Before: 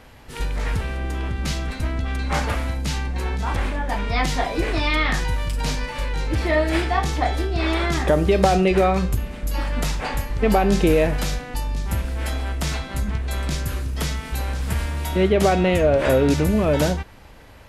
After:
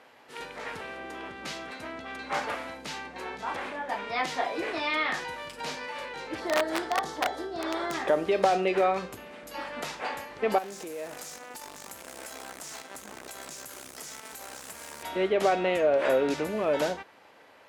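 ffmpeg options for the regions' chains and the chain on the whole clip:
ffmpeg -i in.wav -filter_complex "[0:a]asettb=1/sr,asplit=3[link_01][link_02][link_03];[link_01]atrim=end=6.404[link_04];[link_02]atrim=start=6.4:end=7.94,asetpts=PTS-STARTPTS,afade=type=in:duration=0.004:curve=qsin,afade=type=out:start_time=1.536:duration=0.004:curve=qsin,equalizer=frequency=2500:width=2.5:gain=-14,aeval=exprs='(mod(3.76*val(0)+1,2)-1)/3.76':channel_layout=same[link_05];[link_03]atrim=start=7.936[link_06];[link_04][link_05]acrossfade=duration=0.004:curve1=hsin:curve2=qsin[link_07];[link_07][link_06]acrossfade=duration=0.004:curve1=qsin:curve2=hsin,asettb=1/sr,asplit=3[link_08][link_09][link_10];[link_08]atrim=end=10.584[link_11];[link_09]atrim=start=10.58:end=15.03,asetpts=PTS-STARTPTS,afade=type=in:duration=0.004:curve=qsin,afade=type=out:start_time=4.446:duration=0.004:curve=qsin,highshelf=frequency=5000:width_type=q:width=1.5:gain=13,acrusher=bits=5:dc=4:mix=0:aa=0.000001,acompressor=threshold=-26dB:ratio=8:attack=3.2:release=140:knee=1:detection=peak[link_12];[link_10]atrim=start=15.026[link_13];[link_11][link_12]acrossfade=duration=0.004:curve1=hsin:curve2=qsin[link_14];[link_14][link_13]acrossfade=duration=0.004:curve1=qsin:curve2=hsin,highpass=400,aemphasis=mode=reproduction:type=cd,volume=-4.5dB" out.wav

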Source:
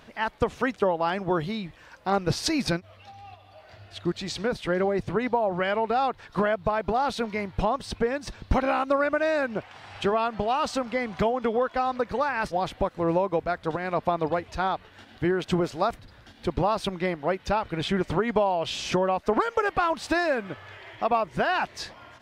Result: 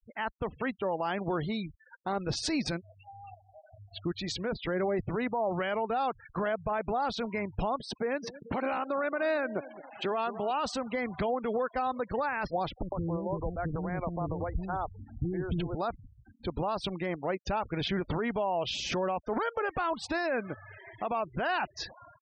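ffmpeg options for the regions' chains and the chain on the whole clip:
ffmpeg -i in.wav -filter_complex "[0:a]asettb=1/sr,asplit=3[link_01][link_02][link_03];[link_01]atrim=end=7.814[link_04];[link_02]atrim=start=7.81:end=10.51,asetpts=PTS-STARTPTS,afade=type=in:duration=0.004:curve=qsin,afade=type=out:start_time=2.696:duration=0.004:curve=qsin,highpass=190,asplit=2[link_05][link_06];[link_06]adelay=218,lowpass=frequency=1100:poles=1,volume=-16dB,asplit=2[link_07][link_08];[link_08]adelay=218,lowpass=frequency=1100:poles=1,volume=0.49,asplit=2[link_09][link_10];[link_10]adelay=218,lowpass=frequency=1100:poles=1,volume=0.49,asplit=2[link_11][link_12];[link_12]adelay=218,lowpass=frequency=1100:poles=1,volume=0.49[link_13];[link_05][link_07][link_09][link_11][link_13]amix=inputs=5:normalize=0,atrim=end_sample=119070[link_14];[link_03]atrim=start=10.506[link_15];[link_04][link_14]acrossfade=duration=0.004:curve1=hsin:curve2=qsin[link_16];[link_16][link_15]acrossfade=duration=0.004:curve1=qsin:curve2=hsin,asettb=1/sr,asplit=3[link_17][link_18][link_19];[link_17]atrim=end=12.824[link_20];[link_18]atrim=start=12.82:end=15.75,asetpts=PTS-STARTPTS,afade=type=in:duration=0.004:curve=qsin,afade=type=out:start_time=2.926:duration=0.004:curve=qsin,aemphasis=mode=reproduction:type=riaa,acompressor=threshold=-24dB:ratio=6:attack=3.2:release=140:knee=1:detection=peak,acrossover=split=370[link_21][link_22];[link_22]adelay=100[link_23];[link_21][link_23]amix=inputs=2:normalize=0,atrim=end_sample=129213[link_24];[link_19]atrim=start=15.746[link_25];[link_20][link_24]acrossfade=duration=0.004:curve1=hsin:curve2=qsin[link_26];[link_26][link_25]acrossfade=duration=0.004:curve1=qsin:curve2=hsin,afftfilt=real='re*gte(hypot(re,im),0.0141)':imag='im*gte(hypot(re,im),0.0141)':win_size=1024:overlap=0.75,alimiter=limit=-20.5dB:level=0:latency=1:release=28,volume=-2dB" out.wav

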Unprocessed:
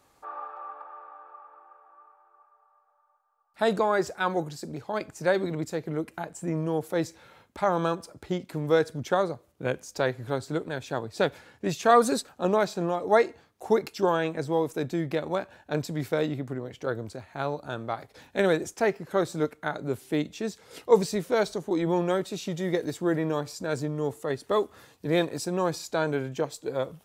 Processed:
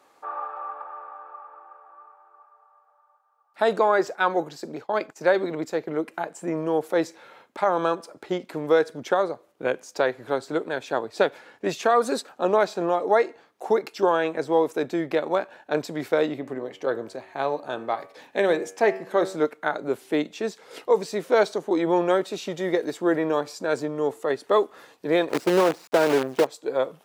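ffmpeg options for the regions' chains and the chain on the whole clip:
ffmpeg -i in.wav -filter_complex "[0:a]asettb=1/sr,asplit=3[link_01][link_02][link_03];[link_01]atrim=end=3.884[link_04];[link_02]atrim=start=3.88:end=6.05,asetpts=PTS-STARTPTS,afade=type=in:duration=0.004:curve=qsin,afade=type=out:start_time=2.166:duration=0.004:curve=qsin,agate=range=-33dB:threshold=-43dB:ratio=3:release=100:detection=peak,equalizer=frequency=9200:width_type=o:width=0.36:gain=-5.5[link_05];[link_03]atrim=start=6.046[link_06];[link_04][link_05]acrossfade=duration=0.004:curve1=hsin:curve2=qsin[link_07];[link_07][link_06]acrossfade=duration=0.004:curve1=qsin:curve2=hsin,asettb=1/sr,asplit=3[link_08][link_09][link_10];[link_08]atrim=end=16.324[link_11];[link_09]atrim=start=16.32:end=19.36,asetpts=PTS-STARTPTS,afade=type=in:duration=0.004:curve=qsin,afade=type=out:start_time=3.036:duration=0.004:curve=qsin,bandreject=frequency=1400:width=8.5,bandreject=frequency=94.98:width_type=h:width=4,bandreject=frequency=189.96:width_type=h:width=4,bandreject=frequency=284.94:width_type=h:width=4,bandreject=frequency=379.92:width_type=h:width=4,bandreject=frequency=474.9:width_type=h:width=4,bandreject=frequency=569.88:width_type=h:width=4,bandreject=frequency=664.86:width_type=h:width=4,bandreject=frequency=759.84:width_type=h:width=4,bandreject=frequency=854.82:width_type=h:width=4,bandreject=frequency=949.8:width_type=h:width=4,bandreject=frequency=1044.78:width_type=h:width=4,bandreject=frequency=1139.76:width_type=h:width=4,bandreject=frequency=1234.74:width_type=h:width=4,bandreject=frequency=1329.72:width_type=h:width=4,bandreject=frequency=1424.7:width_type=h:width=4,bandreject=frequency=1519.68:width_type=h:width=4,bandreject=frequency=1614.66:width_type=h:width=4,bandreject=frequency=1709.64:width_type=h:width=4,bandreject=frequency=1804.62:width_type=h:width=4,bandreject=frequency=1899.6:width_type=h:width=4,bandreject=frequency=1994.58:width_type=h:width=4,bandreject=frequency=2089.56:width_type=h:width=4,bandreject=frequency=2184.54:width_type=h:width=4,bandreject=frequency=2279.52:width_type=h:width=4,bandreject=frequency=2374.5:width_type=h:width=4,bandreject=frequency=2469.48:width_type=h:width=4,bandreject=frequency=2564.46:width_type=h:width=4,bandreject=frequency=2659.44:width_type=h:width=4,bandreject=frequency=2754.42:width_type=h:width=4,bandreject=frequency=2849.4:width_type=h:width=4,bandreject=frequency=2944.38:width_type=h:width=4,bandreject=frequency=3039.36:width_type=h:width=4[link_12];[link_10]atrim=start=19.356[link_13];[link_11][link_12]acrossfade=duration=0.004:curve1=hsin:curve2=qsin[link_14];[link_14][link_13]acrossfade=duration=0.004:curve1=qsin:curve2=hsin,asettb=1/sr,asplit=3[link_15][link_16][link_17];[link_15]atrim=end=25.294[link_18];[link_16]atrim=start=25.29:end=26.47,asetpts=PTS-STARTPTS,afade=type=in:duration=0.004:curve=qsin,afade=type=out:start_time=1.176:duration=0.004:curve=qsin,tiltshelf=frequency=1500:gain=8,acrusher=bits=5:dc=4:mix=0:aa=0.000001[link_19];[link_17]atrim=start=26.466[link_20];[link_18][link_19]acrossfade=duration=0.004:curve1=hsin:curve2=qsin[link_21];[link_21][link_20]acrossfade=duration=0.004:curve1=qsin:curve2=hsin,alimiter=limit=-14dB:level=0:latency=1:release=353,highpass=330,highshelf=frequency=4300:gain=-9,volume=6.5dB" out.wav

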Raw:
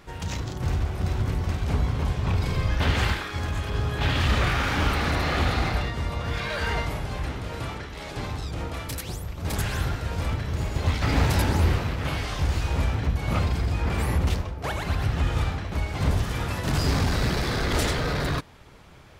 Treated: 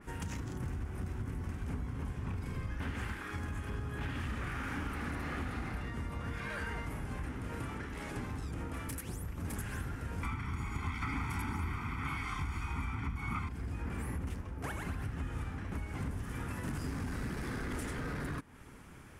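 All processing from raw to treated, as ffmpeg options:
ffmpeg -i in.wav -filter_complex "[0:a]asettb=1/sr,asplit=3[link_01][link_02][link_03];[link_01]atrim=end=10.234[link_04];[link_02]atrim=start=10.23:end=13.49,asetpts=PTS-STARTPTS,afade=type=in:duration=0.004:curve=qsin,afade=type=out:start_time=3.256:duration=0.004:curve=qsin,equalizer=frequency=1800:width=0.42:gain=10,aecho=1:1:0.9:0.98,atrim=end_sample=143766[link_05];[link_03]atrim=start=13.486[link_06];[link_04][link_05]acrossfade=duration=0.004:curve1=hsin:curve2=qsin[link_07];[link_07][link_06]acrossfade=duration=0.004:curve1=qsin:curve2=hsin,equalizer=frequency=250:width_type=o:width=0.67:gain=7,equalizer=frequency=630:width_type=o:width=0.67:gain=-6,equalizer=frequency=1600:width_type=o:width=0.67:gain=3,equalizer=frequency=4000:width_type=o:width=0.67:gain=-9,equalizer=frequency=10000:width_type=o:width=0.67:gain=9,acompressor=threshold=-32dB:ratio=5,adynamicequalizer=threshold=0.002:dfrequency=3100:dqfactor=0.7:tfrequency=3100:tqfactor=0.7:attack=5:release=100:ratio=0.375:range=2:mode=cutabove:tftype=highshelf,volume=-4dB" out.wav

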